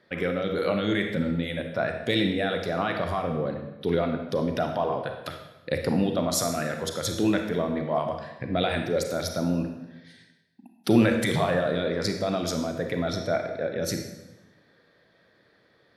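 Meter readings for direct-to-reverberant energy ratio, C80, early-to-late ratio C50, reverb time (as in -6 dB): 4.5 dB, 8.5 dB, 5.5 dB, 1.1 s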